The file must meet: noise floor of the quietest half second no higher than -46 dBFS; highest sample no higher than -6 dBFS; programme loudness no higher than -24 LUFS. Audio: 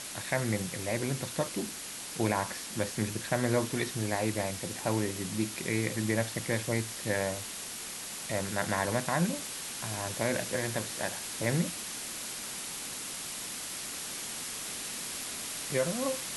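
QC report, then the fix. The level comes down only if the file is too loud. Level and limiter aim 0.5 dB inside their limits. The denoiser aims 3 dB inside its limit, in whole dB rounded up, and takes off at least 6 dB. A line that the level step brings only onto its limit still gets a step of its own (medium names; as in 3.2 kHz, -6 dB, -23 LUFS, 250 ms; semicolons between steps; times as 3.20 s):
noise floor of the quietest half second -41 dBFS: fail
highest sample -13.5 dBFS: pass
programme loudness -33.0 LUFS: pass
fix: noise reduction 8 dB, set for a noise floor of -41 dBFS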